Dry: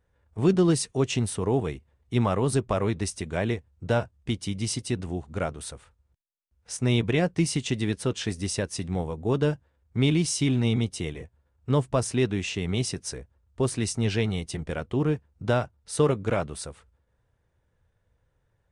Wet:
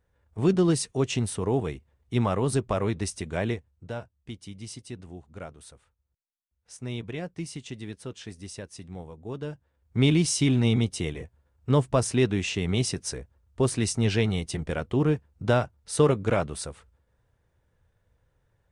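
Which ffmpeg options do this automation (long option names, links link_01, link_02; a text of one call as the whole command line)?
ffmpeg -i in.wav -af "volume=11.5dB,afade=type=out:start_time=3.48:duration=0.43:silence=0.316228,afade=type=in:start_time=9.49:duration=0.53:silence=0.237137" out.wav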